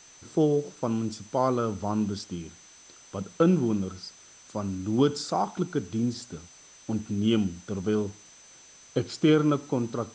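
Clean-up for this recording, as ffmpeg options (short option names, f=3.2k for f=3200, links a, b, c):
-af "bandreject=f=6.1k:w=30,afwtdn=0.0025"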